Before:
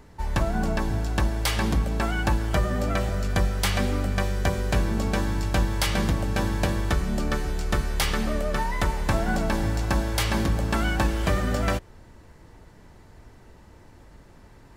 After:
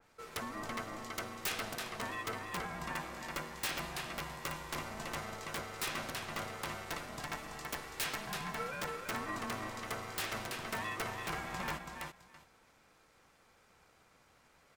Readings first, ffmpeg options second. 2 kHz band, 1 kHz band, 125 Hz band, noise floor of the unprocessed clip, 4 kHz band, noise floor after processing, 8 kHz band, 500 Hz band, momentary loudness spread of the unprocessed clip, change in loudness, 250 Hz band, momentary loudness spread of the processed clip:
-9.5 dB, -10.0 dB, -23.0 dB, -50 dBFS, -10.0 dB, -67 dBFS, -9.0 dB, -15.0 dB, 3 LU, -14.0 dB, -18.5 dB, 5 LU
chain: -filter_complex "[0:a]highpass=f=960:p=1,asplit=2[s0][s1];[s1]aecho=0:1:331|662|993:0.531|0.0849|0.0136[s2];[s0][s2]amix=inputs=2:normalize=0,aeval=exprs='(mod(8.91*val(0)+1,2)-1)/8.91':c=same,aeval=exprs='val(0)*sin(2*PI*430*n/s)':c=same,adynamicequalizer=threshold=0.00562:dfrequency=2900:dqfactor=0.7:tfrequency=2900:tqfactor=0.7:attack=5:release=100:ratio=0.375:range=2.5:mode=cutabove:tftype=highshelf,volume=0.596"

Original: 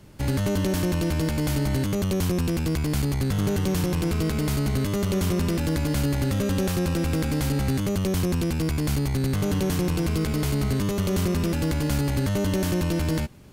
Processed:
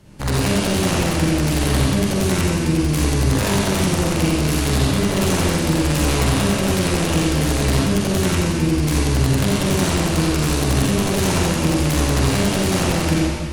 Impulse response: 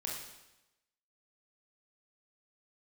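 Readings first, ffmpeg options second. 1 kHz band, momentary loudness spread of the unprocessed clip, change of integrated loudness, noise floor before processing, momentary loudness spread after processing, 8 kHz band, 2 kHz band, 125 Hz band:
+10.5 dB, 1 LU, +6.5 dB, -26 dBFS, 1 LU, +11.0 dB, +10.0 dB, +5.0 dB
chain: -filter_complex "[0:a]aeval=exprs='(mod(7.5*val(0)+1,2)-1)/7.5':c=same[s0];[1:a]atrim=start_sample=2205,asetrate=23373,aresample=44100[s1];[s0][s1]afir=irnorm=-1:irlink=0"

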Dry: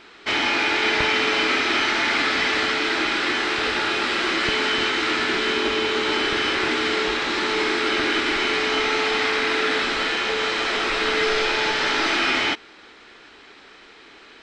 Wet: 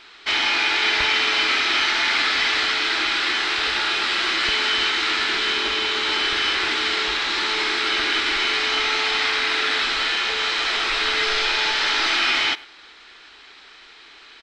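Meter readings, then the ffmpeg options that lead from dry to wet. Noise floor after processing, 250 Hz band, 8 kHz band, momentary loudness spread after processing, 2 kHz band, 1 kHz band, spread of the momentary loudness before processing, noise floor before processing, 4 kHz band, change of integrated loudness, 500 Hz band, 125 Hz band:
-47 dBFS, -8.0 dB, +2.0 dB, 3 LU, +1.0 dB, -1.0 dB, 3 LU, -47 dBFS, +4.0 dB, +1.5 dB, -7.5 dB, no reading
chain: -filter_complex "[0:a]equalizer=f=125:t=o:w=1:g=-9,equalizer=f=250:t=o:w=1:g=-7,equalizer=f=500:t=o:w=1:g=-6,equalizer=f=4000:t=o:w=1:g=5,asplit=2[s0][s1];[s1]adelay=100,highpass=300,lowpass=3400,asoftclip=type=hard:threshold=0.158,volume=0.1[s2];[s0][s2]amix=inputs=2:normalize=0"

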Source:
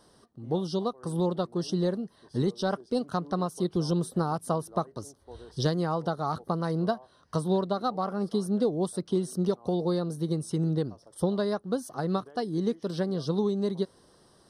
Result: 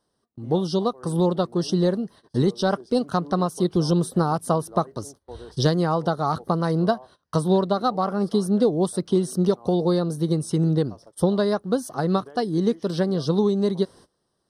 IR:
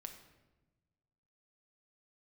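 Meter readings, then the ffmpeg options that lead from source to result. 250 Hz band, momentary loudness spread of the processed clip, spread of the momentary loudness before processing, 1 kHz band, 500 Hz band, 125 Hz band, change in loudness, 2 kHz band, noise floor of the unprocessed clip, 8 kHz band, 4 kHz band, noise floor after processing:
+6.5 dB, 6 LU, 6 LU, +6.5 dB, +6.5 dB, +6.5 dB, +6.5 dB, +6.5 dB, -61 dBFS, +6.5 dB, +6.5 dB, -74 dBFS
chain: -af "agate=range=0.0891:threshold=0.00282:ratio=16:detection=peak,volume=2.11"

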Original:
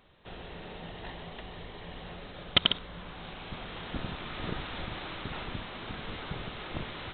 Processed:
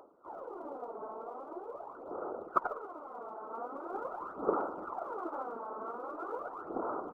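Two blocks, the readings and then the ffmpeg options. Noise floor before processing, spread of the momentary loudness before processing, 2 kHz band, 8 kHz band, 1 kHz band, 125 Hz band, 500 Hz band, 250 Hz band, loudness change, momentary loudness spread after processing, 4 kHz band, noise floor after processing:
-46 dBFS, 16 LU, -12.0 dB, no reading, +5.0 dB, -22.0 dB, +5.0 dB, -3.0 dB, -4.0 dB, 11 LU, under -40 dB, -50 dBFS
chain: -af "acompressor=mode=upward:threshold=0.00141:ratio=2.5,afftfilt=real='re*between(b*sr/4096,320,1400)':imag='im*between(b*sr/4096,320,1400)':win_size=4096:overlap=0.75,afftfilt=real='hypot(re,im)*cos(2*PI*random(0))':imag='hypot(re,im)*sin(2*PI*random(1))':win_size=512:overlap=0.75,aphaser=in_gain=1:out_gain=1:delay=4.6:decay=0.68:speed=0.43:type=sinusoidal,aecho=1:1:196:0.0841,volume=2.37"

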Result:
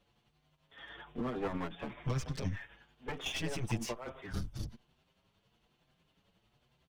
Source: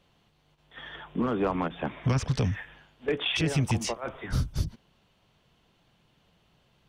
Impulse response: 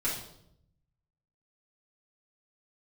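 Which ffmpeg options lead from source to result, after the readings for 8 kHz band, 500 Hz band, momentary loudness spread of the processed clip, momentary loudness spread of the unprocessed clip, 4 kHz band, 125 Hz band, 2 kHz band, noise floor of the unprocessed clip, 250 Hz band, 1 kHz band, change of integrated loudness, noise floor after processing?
-7.5 dB, -9.5 dB, 12 LU, 12 LU, -10.0 dB, -10.5 dB, -8.5 dB, -67 dBFS, -9.5 dB, -9.5 dB, -10.0 dB, -76 dBFS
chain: -filter_complex "[0:a]aeval=exprs='clip(val(0),-1,0.0188)':c=same,tremolo=f=11:d=0.44,asplit=2[s0][s1];[s1]adelay=6.7,afreqshift=1.1[s2];[s0][s2]amix=inputs=2:normalize=1,volume=0.794"

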